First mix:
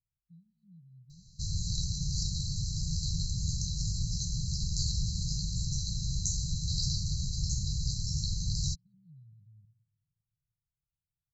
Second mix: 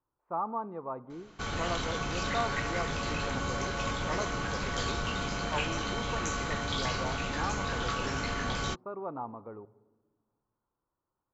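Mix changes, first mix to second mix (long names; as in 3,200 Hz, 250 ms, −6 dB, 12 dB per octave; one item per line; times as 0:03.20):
background −6.0 dB
master: remove linear-phase brick-wall band-stop 180–3,900 Hz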